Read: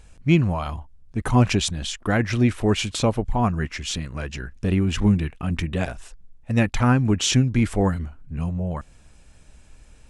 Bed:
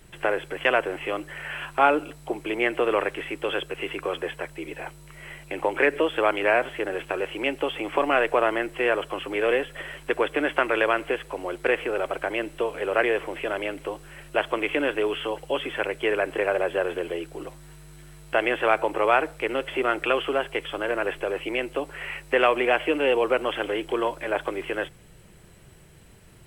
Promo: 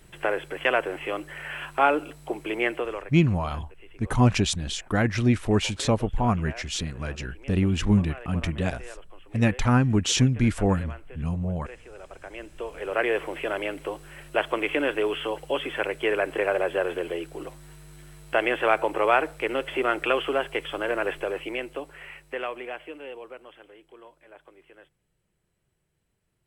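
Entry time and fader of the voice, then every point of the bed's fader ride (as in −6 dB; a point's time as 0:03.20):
2.85 s, −2.0 dB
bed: 0:02.70 −1.5 dB
0:03.22 −21 dB
0:11.77 −21 dB
0:13.16 −0.5 dB
0:21.17 −0.5 dB
0:23.76 −24 dB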